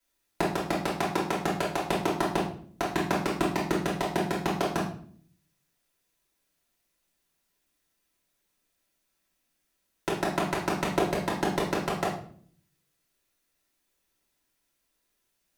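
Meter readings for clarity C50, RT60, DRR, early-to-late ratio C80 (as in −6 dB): 4.5 dB, 0.55 s, −5.5 dB, 9.5 dB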